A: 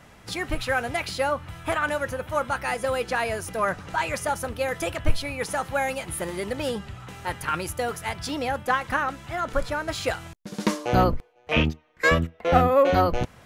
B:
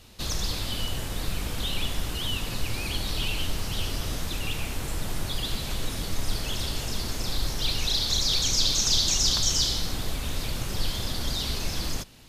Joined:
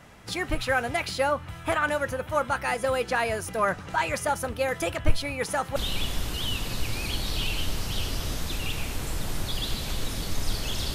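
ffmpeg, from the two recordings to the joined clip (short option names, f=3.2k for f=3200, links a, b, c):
-filter_complex "[0:a]apad=whole_dur=10.94,atrim=end=10.94,atrim=end=5.762[a];[1:a]atrim=start=1.568:end=6.75[b];[a][b]acrossfade=d=0.004:c1=hsin:c2=hsin"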